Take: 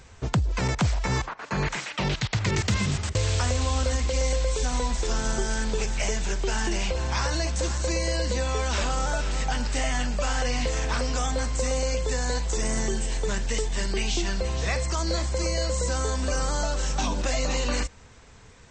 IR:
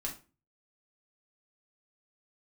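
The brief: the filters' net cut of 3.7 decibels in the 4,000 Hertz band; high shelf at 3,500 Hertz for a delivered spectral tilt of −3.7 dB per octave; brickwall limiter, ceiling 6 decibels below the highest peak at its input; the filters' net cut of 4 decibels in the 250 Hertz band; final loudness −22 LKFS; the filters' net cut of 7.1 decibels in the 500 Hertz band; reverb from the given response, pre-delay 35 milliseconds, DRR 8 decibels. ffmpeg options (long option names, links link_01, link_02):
-filter_complex "[0:a]equalizer=frequency=250:width_type=o:gain=-3.5,equalizer=frequency=500:width_type=o:gain=-7.5,highshelf=frequency=3500:gain=4,equalizer=frequency=4000:width_type=o:gain=-8,alimiter=limit=-21dB:level=0:latency=1,asplit=2[link_01][link_02];[1:a]atrim=start_sample=2205,adelay=35[link_03];[link_02][link_03]afir=irnorm=-1:irlink=0,volume=-8.5dB[link_04];[link_01][link_04]amix=inputs=2:normalize=0,volume=8dB"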